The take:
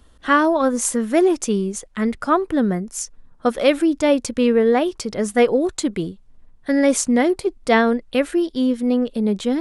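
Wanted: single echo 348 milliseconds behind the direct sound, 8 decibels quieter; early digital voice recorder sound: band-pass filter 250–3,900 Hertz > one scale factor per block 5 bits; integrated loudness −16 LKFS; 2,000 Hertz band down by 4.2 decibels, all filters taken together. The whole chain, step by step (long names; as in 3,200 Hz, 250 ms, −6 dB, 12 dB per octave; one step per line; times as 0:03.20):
band-pass filter 250–3,900 Hz
parametric band 2,000 Hz −5 dB
single-tap delay 348 ms −8 dB
one scale factor per block 5 bits
level +4.5 dB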